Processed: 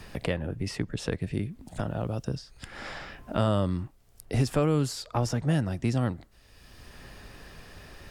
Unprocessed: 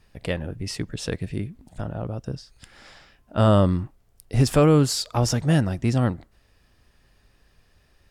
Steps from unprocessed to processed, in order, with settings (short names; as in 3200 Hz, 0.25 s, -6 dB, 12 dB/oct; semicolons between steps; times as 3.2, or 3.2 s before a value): three-band squash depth 70%; gain -5 dB